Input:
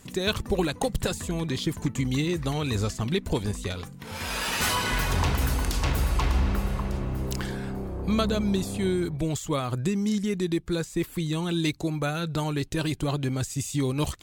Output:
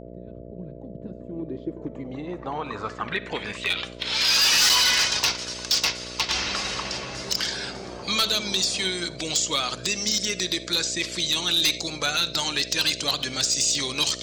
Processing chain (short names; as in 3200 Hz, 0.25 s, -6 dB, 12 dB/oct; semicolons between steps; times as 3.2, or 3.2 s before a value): bin magnitudes rounded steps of 15 dB; weighting filter ITU-R 468; 4.69–6.29 gate -25 dBFS, range -15 dB; in parallel at -2 dB: compressor 12:1, threshold -33 dBFS, peak gain reduction 18.5 dB; on the sum: low-pass sweep 130 Hz -> 5300 Hz, 0.5–4.39; buzz 60 Hz, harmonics 11, -41 dBFS 0 dB/oct; on a send at -15.5 dB: reverb, pre-delay 44 ms; on the sum: hard clip -15 dBFS, distortion -12 dB